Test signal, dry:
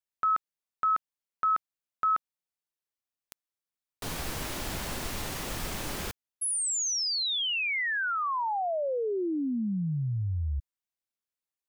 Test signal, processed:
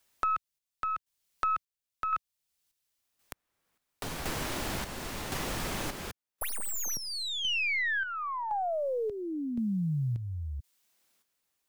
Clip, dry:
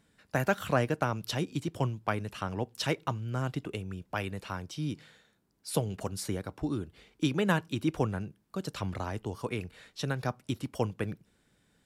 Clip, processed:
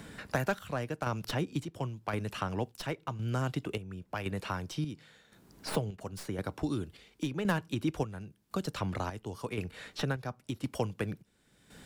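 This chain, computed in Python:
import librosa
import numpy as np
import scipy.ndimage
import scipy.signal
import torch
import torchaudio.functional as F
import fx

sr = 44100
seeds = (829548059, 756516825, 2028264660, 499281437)

y = fx.tracing_dist(x, sr, depth_ms=0.054)
y = fx.chopper(y, sr, hz=0.94, depth_pct=60, duty_pct=55)
y = fx.band_squash(y, sr, depth_pct=70)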